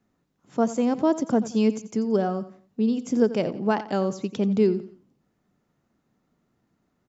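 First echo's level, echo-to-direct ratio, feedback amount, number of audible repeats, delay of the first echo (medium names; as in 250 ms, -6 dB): -15.0 dB, -14.5 dB, 33%, 3, 88 ms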